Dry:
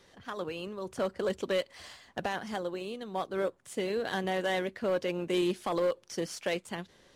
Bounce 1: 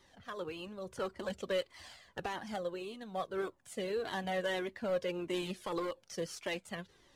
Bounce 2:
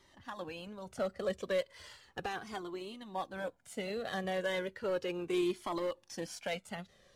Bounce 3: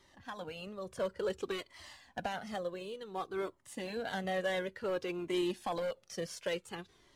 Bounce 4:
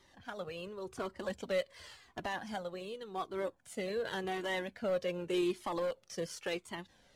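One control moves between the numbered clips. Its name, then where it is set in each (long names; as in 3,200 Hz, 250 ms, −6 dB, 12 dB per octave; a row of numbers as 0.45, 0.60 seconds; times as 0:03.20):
flanger whose copies keep moving one way, speed: 1.7, 0.35, 0.56, 0.89 Hertz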